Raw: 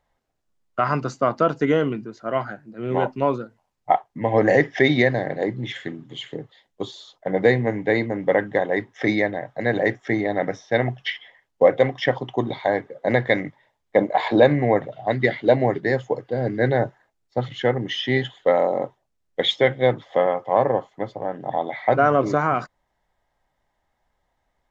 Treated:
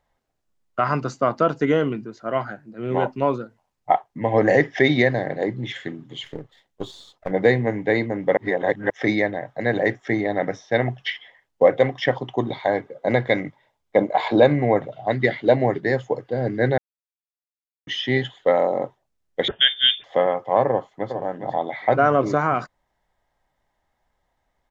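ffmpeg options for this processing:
ffmpeg -i in.wav -filter_complex "[0:a]asettb=1/sr,asplit=3[link_01][link_02][link_03];[link_01]atrim=end=6.244[link_04];[link_02]atrim=start=6.24:end=7.31,asetpts=PTS-STARTPTS,afade=type=in:duration=0.004:curve=qsin,afade=type=out:start_time=1.066:duration=0.004:curve=qsin,aeval=exprs='if(lt(val(0),0),0.447*val(0),val(0))':channel_layout=same[link_05];[link_03]atrim=start=7.306[link_06];[link_04][link_05]acrossfade=duration=0.004:curve1=hsin:curve2=qsin[link_07];[link_07][link_06]acrossfade=duration=0.004:curve1=qsin:curve2=hsin,asettb=1/sr,asplit=3[link_08][link_09][link_10];[link_08]atrim=end=12.704[link_11];[link_09]atrim=start=12.7:end=15.09,asetpts=PTS-STARTPTS,afade=type=in:duration=0.004:curve=qsin,afade=type=out:start_time=2.386:duration=0.004:curve=qsin,bandreject=frequency=1800:width=9.3[link_12];[link_10]atrim=start=15.086[link_13];[link_11][link_12]acrossfade=duration=0.004:curve1=hsin:curve2=qsin[link_14];[link_14][link_13]acrossfade=duration=0.004:curve1=qsin:curve2=hsin,asettb=1/sr,asplit=3[link_15][link_16][link_17];[link_15]atrim=end=19.484[link_18];[link_16]atrim=start=19.48:end=20.04,asetpts=PTS-STARTPTS,afade=type=in:duration=0.004:curve=qsin,afade=type=out:start_time=0.556:duration=0.004:curve=qsin,lowpass=frequency=3100:width_type=q:width=0.5098,lowpass=frequency=3100:width_type=q:width=0.6013,lowpass=frequency=3100:width_type=q:width=0.9,lowpass=frequency=3100:width_type=q:width=2.563,afreqshift=-3700[link_19];[link_17]atrim=start=20.036[link_20];[link_18][link_19]acrossfade=duration=0.004:curve1=hsin:curve2=qsin[link_21];[link_21][link_20]acrossfade=duration=0.004:curve1=qsin:curve2=hsin,asplit=2[link_22][link_23];[link_23]afade=type=in:start_time=20.68:duration=0.01,afade=type=out:start_time=21.16:duration=0.01,aecho=0:1:410|820:0.421697|0.0421697[link_24];[link_22][link_24]amix=inputs=2:normalize=0,asplit=5[link_25][link_26][link_27][link_28][link_29];[link_25]atrim=end=8.372[link_30];[link_26]atrim=start=8.368:end=8.902,asetpts=PTS-STARTPTS,areverse[link_31];[link_27]atrim=start=8.898:end=16.78,asetpts=PTS-STARTPTS,afade=type=out:start_time=7.878:duration=0.004:curve=hsin[link_32];[link_28]atrim=start=16.78:end=17.87,asetpts=PTS-STARTPTS,volume=0[link_33];[link_29]atrim=start=17.87,asetpts=PTS-STARTPTS,afade=type=in:duration=0.004:curve=hsin[link_34];[link_30][link_31]acrossfade=duration=0.004:curve1=hsin:curve2=hsin[link_35];[link_32][link_33][link_34]concat=n=3:v=0:a=1[link_36];[link_35][link_36]acrossfade=duration=0.004:curve1=hsin:curve2=hsin" out.wav

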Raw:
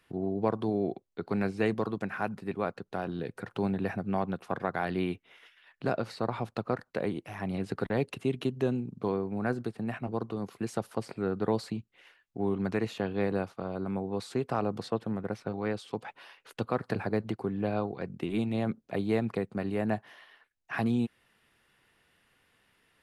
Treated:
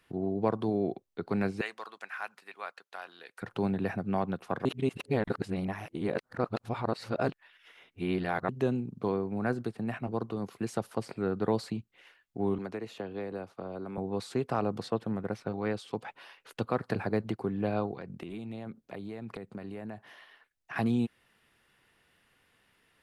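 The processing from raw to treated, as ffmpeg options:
ffmpeg -i in.wav -filter_complex "[0:a]asettb=1/sr,asplit=3[link_01][link_02][link_03];[link_01]atrim=end=1.614[link_04];[link_02]atrim=start=1.61:end=3.42,asetpts=PTS-STARTPTS,afade=type=in:duration=0.004:curve=qsin,afade=type=out:start_time=1.806:duration=0.004:curve=qsin,highpass=1200[link_05];[link_03]atrim=start=3.416[link_06];[link_04][link_05]acrossfade=duration=0.004:curve1=hsin:curve2=qsin[link_07];[link_07][link_06]acrossfade=duration=0.004:curve1=qsin:curve2=hsin,asettb=1/sr,asplit=3[link_08][link_09][link_10];[link_08]atrim=end=12.584[link_11];[link_09]atrim=start=12.58:end=13.98,asetpts=PTS-STARTPTS,afade=type=in:duration=0.004:curve=qsin,afade=type=out:start_time=1.396:duration=0.004:curve=qsin,acrossover=split=310|710[link_12][link_13][link_14];[link_12]acompressor=threshold=-46dB:ratio=4[link_15];[link_13]acompressor=threshold=-37dB:ratio=4[link_16];[link_14]acompressor=threshold=-47dB:ratio=4[link_17];[link_15][link_16][link_17]amix=inputs=3:normalize=0[link_18];[link_10]atrim=start=13.976[link_19];[link_11][link_18]acrossfade=duration=0.004:curve1=hsin:curve2=qsin[link_20];[link_20][link_19]acrossfade=duration=0.004:curve1=qsin:curve2=hsin,asettb=1/sr,asplit=3[link_21][link_22][link_23];[link_21]atrim=end=17.944[link_24];[link_22]atrim=start=17.94:end=20.76,asetpts=PTS-STARTPTS,afade=type=in:duration=0.004:curve=qsin,afade=type=out:start_time=2.816:duration=0.004:curve=qsin,acompressor=threshold=-36dB:ratio=12:attack=3.2:release=140:knee=1:detection=peak[link_25];[link_23]atrim=start=20.756[link_26];[link_24][link_25]acrossfade=duration=0.004:curve1=hsin:curve2=qsin[link_27];[link_27][link_26]acrossfade=duration=0.004:curve1=qsin:curve2=hsin,asplit=3[link_28][link_29][link_30];[link_28]atrim=end=4.652[link_31];[link_29]atrim=start=4.648:end=8.492,asetpts=PTS-STARTPTS,areverse[link_32];[link_30]atrim=start=8.488[link_33];[link_31][link_32]acrossfade=duration=0.004:curve1=hsin:curve2=hsin[link_34];[link_34][link_33]acrossfade=duration=0.004:curve1=hsin:curve2=hsin" out.wav

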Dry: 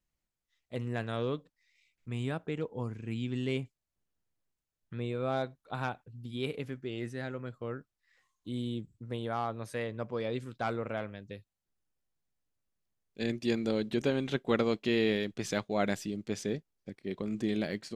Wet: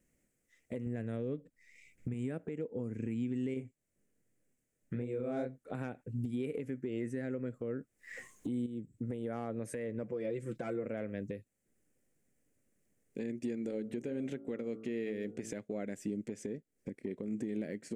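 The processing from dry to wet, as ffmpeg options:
ffmpeg -i in.wav -filter_complex "[0:a]asettb=1/sr,asplit=3[link_01][link_02][link_03];[link_01]atrim=end=0.864[link_04];[link_02]atrim=start=0.86:end=2.14,asetpts=PTS-STARTPTS,afade=type=in:duration=0.004:curve=qsin,afade=type=out:start_time=1.276:duration=0.004:curve=qsin,lowshelf=frequency=160:gain=10.5[link_05];[link_03]atrim=start=2.136[link_06];[link_04][link_05]acrossfade=duration=0.004:curve1=hsin:curve2=qsin[link_07];[link_07][link_06]acrossfade=duration=0.004:curve1=qsin:curve2=hsin,asettb=1/sr,asplit=3[link_08][link_09][link_10];[link_08]atrim=end=3.544[link_11];[link_09]atrim=start=3.54:end=5.75,asetpts=PTS-STARTPTS,afade=type=in:duration=0.004:curve=qsin,afade=type=out:start_time=2.206:duration=0.004:curve=qsin,flanger=delay=22.5:depth=5:speed=2.5[link_12];[link_10]atrim=start=5.746[link_13];[link_11][link_12]acrossfade=duration=0.004:curve1=hsin:curve2=qsin[link_14];[link_14][link_13]acrossfade=duration=0.004:curve1=qsin:curve2=hsin,asettb=1/sr,asplit=3[link_15][link_16][link_17];[link_15]atrim=end=10.034[link_18];[link_16]atrim=start=10.03:end=10.86,asetpts=PTS-STARTPTS,afade=type=in:duration=0.004:curve=qsin,afade=type=out:start_time=0.826:duration=0.004:curve=qsin,aecho=1:1:5.9:0.76,atrim=end_sample=36603[link_19];[link_17]atrim=start=10.856[link_20];[link_18][link_19]acrossfade=duration=0.004:curve1=hsin:curve2=qsin[link_21];[link_21][link_20]acrossfade=duration=0.004:curve1=qsin:curve2=hsin,asettb=1/sr,asplit=3[link_22][link_23][link_24];[link_22]atrim=end=13.624[link_25];[link_23]atrim=start=13.62:end=15.54,asetpts=PTS-STARTPTS,afade=type=in:duration=0.004:curve=qsin,afade=type=out:start_time=1.916:duration=0.004:curve=qsin,bandreject=frequency=55.48:width_type=h:width=4,bandreject=frequency=110.96:width_type=h:width=4,bandreject=frequency=166.44:width_type=h:width=4,bandreject=frequency=221.92:width_type=h:width=4,bandreject=frequency=277.4:width_type=h:width=4,bandreject=frequency=332.88:width_type=h:width=4,bandreject=frequency=388.36:width_type=h:width=4,bandreject=frequency=443.84:width_type=h:width=4,bandreject=frequency=499.32:width_type=h:width=4,bandreject=frequency=554.8:width_type=h:width=4,bandreject=frequency=610.28:width_type=h:width=4,bandreject=frequency=665.76:width_type=h:width=4,bandreject=frequency=721.24:width_type=h:width=4,bandreject=frequency=776.72:width_type=h:width=4,bandreject=frequency=832.2:width_type=h:width=4,bandreject=frequency=887.68:width_type=h:width=4,bandreject=frequency=943.16:width_type=h:width=4,bandreject=frequency=998.64:width_type=h:width=4,bandreject=frequency=1054.12:width_type=h:width=4,bandreject=frequency=1109.6:width_type=h:width=4,bandreject=frequency=1165.08:width_type=h:width=4,bandreject=frequency=1220.56:width_type=h:width=4,bandreject=frequency=1276.04:width_type=h:width=4,bandreject=frequency=1331.52:width_type=h:width=4,bandreject=frequency=1387:width_type=h:width=4,bandreject=frequency=1442.48:width_type=h:width=4[link_26];[link_24]atrim=start=15.536[link_27];[link_25][link_26]acrossfade=duration=0.004:curve1=hsin:curve2=qsin[link_28];[link_28][link_27]acrossfade=duration=0.004:curve1=qsin:curve2=hsin,asplit=3[link_29][link_30][link_31];[link_29]atrim=end=6.552[link_32];[link_30]atrim=start=6.548:end=8.662,asetpts=PTS-STARTPTS,volume=12dB[link_33];[link_31]atrim=start=8.658[link_34];[link_32][link_33]acrossfade=duration=0.004:curve1=hsin:curve2=hsin[link_35];[link_35][link_34]acrossfade=duration=0.004:curve1=hsin:curve2=hsin,equalizer=frequency=125:width_type=o:width=1:gain=4,equalizer=frequency=250:width_type=o:width=1:gain=11,equalizer=frequency=500:width_type=o:width=1:gain=11,equalizer=frequency=1000:width_type=o:width=1:gain=-9,equalizer=frequency=2000:width_type=o:width=1:gain=10,equalizer=frequency=4000:width_type=o:width=1:gain=-12,equalizer=frequency=8000:width_type=o:width=1:gain=11,acompressor=threshold=-33dB:ratio=6,alimiter=level_in=9dB:limit=-24dB:level=0:latency=1:release=463,volume=-9dB,volume=5dB" out.wav

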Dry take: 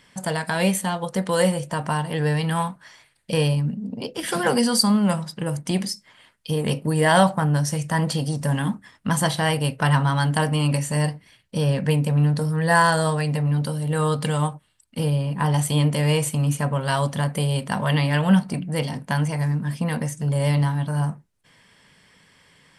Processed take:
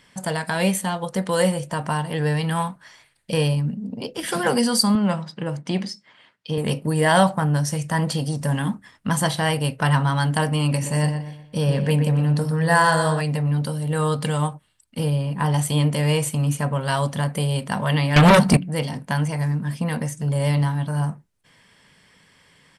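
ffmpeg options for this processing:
ffmpeg -i in.wav -filter_complex "[0:a]asettb=1/sr,asplit=3[link_01][link_02][link_03];[link_01]atrim=end=4.954[link_04];[link_02]atrim=start=4.95:end=6.58,asetpts=PTS-STARTPTS,afade=type=in:duration=0.004:curve=qsin,afade=type=out:start_time=1.626:duration=0.004:curve=qsin,highpass=130,lowpass=4700[link_05];[link_03]atrim=start=6.576[link_06];[link_04][link_05]acrossfade=duration=0.004:curve1=hsin:curve2=qsin[link_07];[link_07][link_06]acrossfade=duration=0.004:curve1=qsin:curve2=hsin,asplit=3[link_08][link_09][link_10];[link_08]afade=type=out:start_time=10.81:duration=0.02[link_11];[link_09]asplit=2[link_12][link_13];[link_13]adelay=121,lowpass=frequency=2900:poles=1,volume=-7.5dB,asplit=2[link_14][link_15];[link_15]adelay=121,lowpass=frequency=2900:poles=1,volume=0.38,asplit=2[link_16][link_17];[link_17]adelay=121,lowpass=frequency=2900:poles=1,volume=0.38,asplit=2[link_18][link_19];[link_19]adelay=121,lowpass=frequency=2900:poles=1,volume=0.38[link_20];[link_12][link_14][link_16][link_18][link_20]amix=inputs=5:normalize=0,afade=type=in:start_time=10.81:duration=0.02,afade=type=out:start_time=13.2:duration=0.02[link_21];[link_10]afade=type=in:start_time=13.2:duration=0.02[link_22];[link_11][link_21][link_22]amix=inputs=3:normalize=0,asettb=1/sr,asplit=3[link_23][link_24][link_25];[link_23]atrim=end=18.164[link_26];[link_24]atrim=start=18.16:end=18.57,asetpts=PTS-STARTPTS,afade=type=in:duration=0.004:curve=qsin,afade=type=out:start_time=0.406:duration=0.004:curve=qsin,aeval=exprs='0.398*sin(PI/2*3.55*val(0)/0.398)':channel_layout=same[link_27];[link_25]atrim=start=18.566[link_28];[link_26][link_27]acrossfade=duration=0.004:curve1=hsin:curve2=qsin[link_29];[link_29][link_28]acrossfade=duration=0.004:curve1=qsin:curve2=hsin" out.wav

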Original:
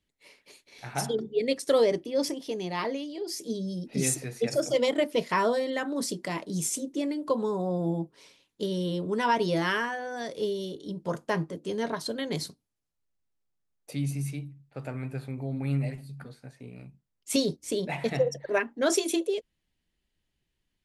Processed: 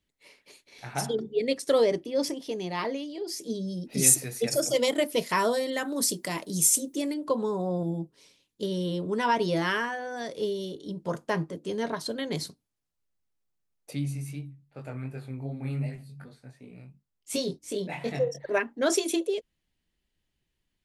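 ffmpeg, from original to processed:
ffmpeg -i in.wav -filter_complex "[0:a]asettb=1/sr,asplit=3[link_01][link_02][link_03];[link_01]atrim=end=3.904[link_04];[link_02]atrim=start=3.9:end=7.14,asetpts=PTS-STARTPTS,afade=type=in:duration=0.004:curve=qsin,afade=type=out:start_time=3.236:duration=0.004:curve=qsin,aemphasis=mode=production:type=50fm[link_05];[link_03]atrim=start=7.136[link_06];[link_04][link_05]acrossfade=duration=0.004:curve1=hsin:curve2=qsin[link_07];[link_07][link_06]acrossfade=duration=0.004:curve1=qsin:curve2=hsin,asettb=1/sr,asplit=3[link_08][link_09][link_10];[link_08]atrim=end=7.834[link_11];[link_09]atrim=start=7.83:end=8.63,asetpts=PTS-STARTPTS,afade=type=in:duration=0.004:curve=qsin,afade=type=out:start_time=0.796:duration=0.004:curve=qsin,equalizer=frequency=1100:width=0.44:gain=-8[link_12];[link_10]atrim=start=8.626[link_13];[link_11][link_12]acrossfade=duration=0.004:curve1=hsin:curve2=qsin[link_14];[link_14][link_13]acrossfade=duration=0.004:curve1=qsin:curve2=hsin,asplit=3[link_15][link_16][link_17];[link_15]afade=type=out:start_time=13.99:duration=0.02[link_18];[link_16]flanger=delay=20:depth=4:speed=2.7,afade=type=in:start_time=13.99:duration=0.02,afade=type=out:start_time=18.37:duration=0.02[link_19];[link_17]afade=type=in:start_time=18.37:duration=0.02[link_20];[link_18][link_19][link_20]amix=inputs=3:normalize=0" out.wav

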